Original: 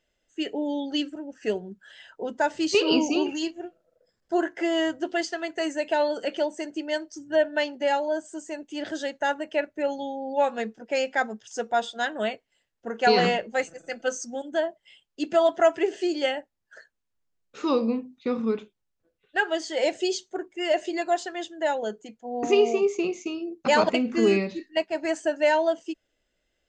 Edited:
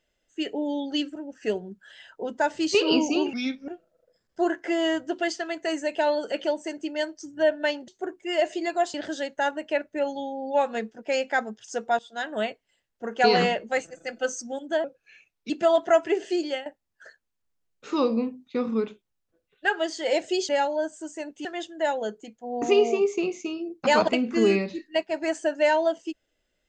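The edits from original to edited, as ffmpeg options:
-filter_complex "[0:a]asplit=11[a][b][c][d][e][f][g][h][i][j][k];[a]atrim=end=3.334[l];[b]atrim=start=3.33:end=3.61,asetpts=PTS-STARTPTS,asetrate=35280,aresample=44100[m];[c]atrim=start=3.606:end=7.812[n];[d]atrim=start=20.198:end=21.262[o];[e]atrim=start=8.768:end=11.82,asetpts=PTS-STARTPTS,afade=t=out:st=3.048:d=0.004:c=hsin:silence=0.11885[p];[f]atrim=start=11.82:end=14.674,asetpts=PTS-STARTPTS,afade=t=in:d=0.37:silence=0.11885[q];[g]atrim=start=14.67:end=15.21,asetpts=PTS-STARTPTS,asetrate=36162,aresample=44100,atrim=end_sample=29041,asetpts=PTS-STARTPTS[r];[h]atrim=start=15.206:end=16.37,asetpts=PTS-STARTPTS,afade=t=out:st=0.914:d=0.25:silence=0.211349[s];[i]atrim=start=16.37:end=20.202,asetpts=PTS-STARTPTS,afade=t=in:d=0.004:c=hsin:silence=0.211349[t];[j]atrim=start=7.808:end=8.772[u];[k]atrim=start=21.258[v];[l][m]acrossfade=d=0.004:c1=hsin:c2=hsin[w];[w][n]acrossfade=d=0.004:c1=hsin:c2=hsin[x];[x][o]acrossfade=d=0.004:c1=hsin:c2=hsin[y];[p][q]concat=n=2:v=0:a=1[z];[y][z]acrossfade=d=0.004:c1=hsin:c2=hsin[aa];[aa][r]acrossfade=d=0.004:c1=hsin:c2=hsin[ab];[s][t]concat=n=2:v=0:a=1[ac];[ab][ac]acrossfade=d=0.004:c1=hsin:c2=hsin[ad];[ad][u]acrossfade=d=0.004:c1=hsin:c2=hsin[ae];[ae][v]acrossfade=d=0.004:c1=hsin:c2=hsin"

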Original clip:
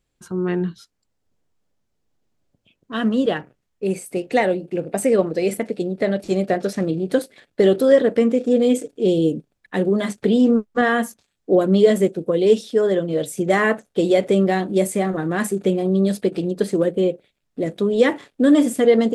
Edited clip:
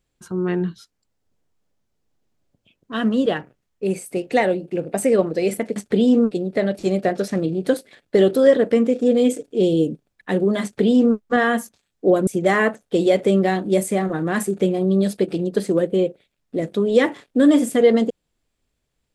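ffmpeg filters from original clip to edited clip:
-filter_complex "[0:a]asplit=4[a][b][c][d];[a]atrim=end=5.762[e];[b]atrim=start=10.078:end=10.632[f];[c]atrim=start=5.758:end=11.722[g];[d]atrim=start=13.308[h];[e][f]acrossfade=d=0.004:c1=hsin:c2=hsin[i];[i][g]acrossfade=d=0.004:c1=hsin:c2=hsin[j];[j][h]acrossfade=d=0.004:c1=hsin:c2=hsin"

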